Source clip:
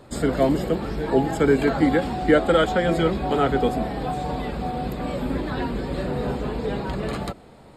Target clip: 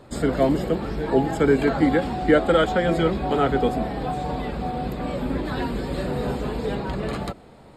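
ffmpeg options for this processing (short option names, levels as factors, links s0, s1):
-af "asetnsamples=n=441:p=0,asendcmd='5.45 highshelf g 5.5;6.75 highshelf g -2.5',highshelf=f=5500:g=-3.5"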